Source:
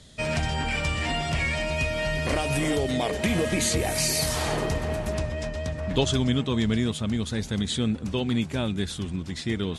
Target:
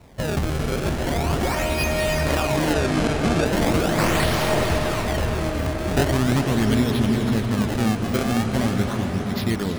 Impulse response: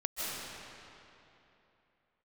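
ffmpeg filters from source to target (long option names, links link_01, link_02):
-filter_complex "[0:a]acrusher=samples=27:mix=1:aa=0.000001:lfo=1:lforange=43.2:lforate=0.4,asettb=1/sr,asplit=3[link_01][link_02][link_03];[link_01]atrim=end=2.734[link_04];[link_02]atrim=start=2.73:end=3.46,asetpts=PTS-STARTPTS,afade=type=in:duration=0.004:curve=qsin,afade=type=out:start_time=0.726:duration=0.004:curve=qsin,acrossover=split=9900[link_05][link_06];[link_06]acompressor=threshold=-52dB:ratio=4:attack=1:release=60[link_07];[link_05][link_07]amix=inputs=2:normalize=0[link_08];[link_03]atrim=start=3.456[link_09];[link_04][link_08]acrossfade=duration=0.004:curve1=hsin:curve2=qsin[link_10];[link_10][link_09]acrossfade=duration=0.004:curve1=qsin:curve2=hsin,asplit=2[link_11][link_12];[1:a]atrim=start_sample=2205,asetrate=22932,aresample=44100[link_13];[link_12][link_13]afir=irnorm=-1:irlink=0,volume=-9.5dB[link_14];[link_11][link_14]amix=inputs=2:normalize=0"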